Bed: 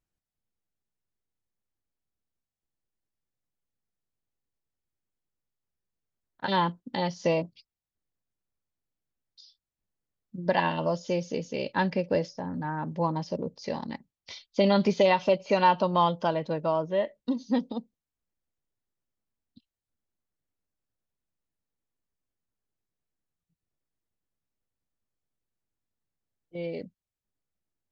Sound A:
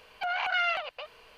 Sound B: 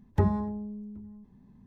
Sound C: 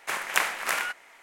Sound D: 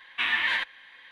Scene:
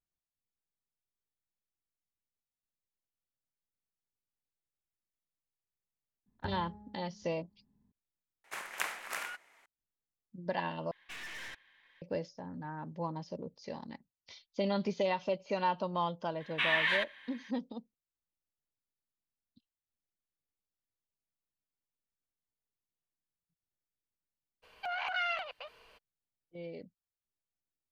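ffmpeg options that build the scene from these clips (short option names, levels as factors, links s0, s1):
-filter_complex "[4:a]asplit=2[s0][s1];[0:a]volume=0.316[s2];[2:a]aecho=1:1:73|146|219|292|365|438:0.355|0.185|0.0959|0.0499|0.0259|0.0135[s3];[s0]aeval=exprs='(tanh(35.5*val(0)+0.65)-tanh(0.65))/35.5':c=same[s4];[s2]asplit=3[s5][s6][s7];[s5]atrim=end=8.444[s8];[3:a]atrim=end=1.22,asetpts=PTS-STARTPTS,volume=0.266[s9];[s6]atrim=start=9.656:end=10.914[s10];[s4]atrim=end=1.11,asetpts=PTS-STARTPTS,volume=0.266[s11];[s7]atrim=start=12.016[s12];[s3]atrim=end=1.66,asetpts=PTS-STARTPTS,volume=0.126,afade=t=in:d=0.004:c=hsin,afade=t=out:st=1.656:d=0.004:c=hsin,adelay=276066S[s13];[s1]atrim=end=1.11,asetpts=PTS-STARTPTS,volume=0.631,afade=t=in:d=0.004:c=hsin,afade=t=out:st=1.106:d=0.004:c=hsin,adelay=16400[s14];[1:a]atrim=end=1.37,asetpts=PTS-STARTPTS,volume=0.501,afade=t=in:d=0.02,afade=t=out:st=1.35:d=0.02,adelay=24620[s15];[s8][s9]acrossfade=d=0.004:c1=hsin:c2=hsin[s16];[s16][s10]acrossfade=d=0.004:c1=hsin:c2=hsin[s17];[s17][s11]acrossfade=d=0.004:c1=hsin:c2=hsin[s18];[s18][s12]acrossfade=d=0.004:c1=hsin:c2=hsin[s19];[s19][s13][s14][s15]amix=inputs=4:normalize=0"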